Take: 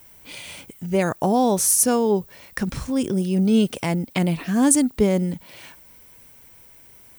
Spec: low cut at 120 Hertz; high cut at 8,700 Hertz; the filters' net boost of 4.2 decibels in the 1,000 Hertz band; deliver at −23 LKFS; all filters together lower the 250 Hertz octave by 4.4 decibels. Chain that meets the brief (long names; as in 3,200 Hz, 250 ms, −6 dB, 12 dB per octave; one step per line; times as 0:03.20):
high-pass filter 120 Hz
low-pass filter 8,700 Hz
parametric band 250 Hz −5.5 dB
parametric band 1,000 Hz +6.5 dB
level −0.5 dB